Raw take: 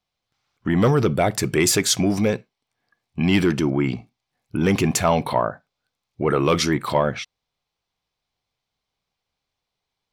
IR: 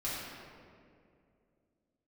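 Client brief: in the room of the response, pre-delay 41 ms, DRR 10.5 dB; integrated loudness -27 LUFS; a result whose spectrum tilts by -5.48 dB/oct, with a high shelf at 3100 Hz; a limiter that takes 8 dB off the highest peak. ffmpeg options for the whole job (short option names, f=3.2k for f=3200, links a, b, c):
-filter_complex "[0:a]highshelf=f=3.1k:g=-8.5,alimiter=limit=-16dB:level=0:latency=1,asplit=2[a][b];[1:a]atrim=start_sample=2205,adelay=41[c];[b][c]afir=irnorm=-1:irlink=0,volume=-15dB[d];[a][d]amix=inputs=2:normalize=0,volume=-1dB"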